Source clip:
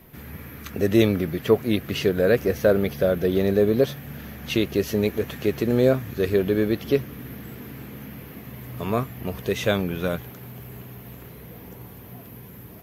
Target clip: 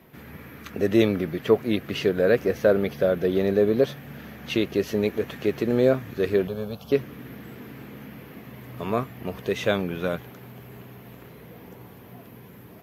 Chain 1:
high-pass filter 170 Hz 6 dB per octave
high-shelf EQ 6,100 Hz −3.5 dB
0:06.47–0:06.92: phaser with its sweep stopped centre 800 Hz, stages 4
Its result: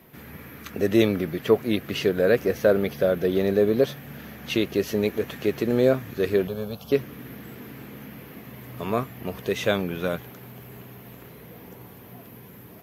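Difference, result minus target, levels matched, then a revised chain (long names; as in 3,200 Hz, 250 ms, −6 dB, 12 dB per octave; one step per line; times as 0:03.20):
8,000 Hz band +3.5 dB
high-pass filter 170 Hz 6 dB per octave
high-shelf EQ 6,100 Hz −10 dB
0:06.47–0:06.92: phaser with its sweep stopped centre 800 Hz, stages 4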